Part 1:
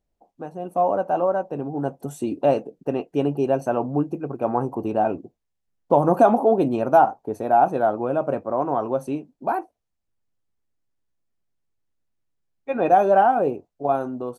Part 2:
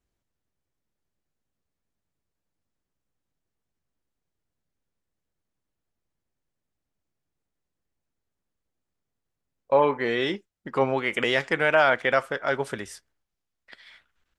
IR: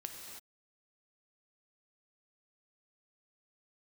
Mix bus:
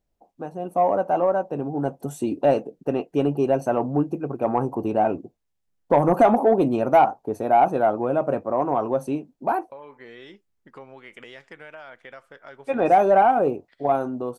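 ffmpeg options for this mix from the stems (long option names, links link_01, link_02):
-filter_complex "[0:a]asoftclip=type=tanh:threshold=-7.5dB,volume=1dB[link_01];[1:a]acompressor=threshold=-26dB:ratio=4,volume=-13.5dB[link_02];[link_01][link_02]amix=inputs=2:normalize=0"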